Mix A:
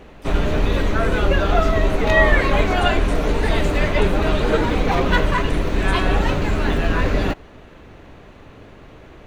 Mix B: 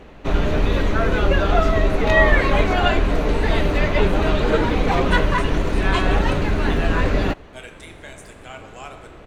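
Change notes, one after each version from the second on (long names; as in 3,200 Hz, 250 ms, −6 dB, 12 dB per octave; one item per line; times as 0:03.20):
speech: entry +2.30 s
master: add high-shelf EQ 9,200 Hz −5.5 dB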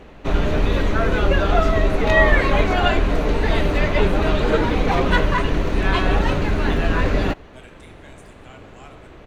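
speech −8.5 dB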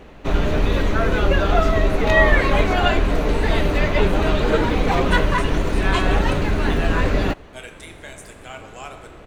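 speech +9.5 dB
master: add high-shelf EQ 9,200 Hz +5.5 dB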